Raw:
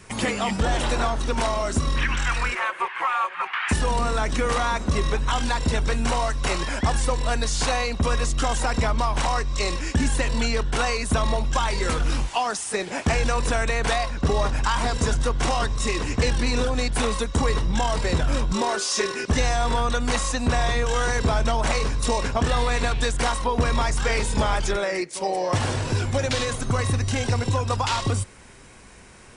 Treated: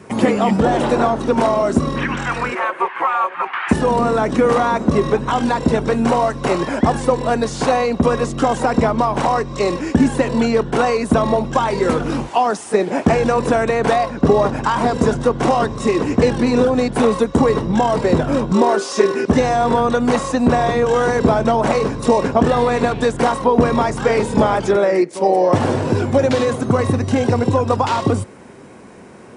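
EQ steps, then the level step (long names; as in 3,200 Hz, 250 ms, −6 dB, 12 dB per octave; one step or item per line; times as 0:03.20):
high-pass filter 200 Hz 12 dB per octave
tilt shelving filter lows +9.5 dB, about 1,200 Hz
+5.5 dB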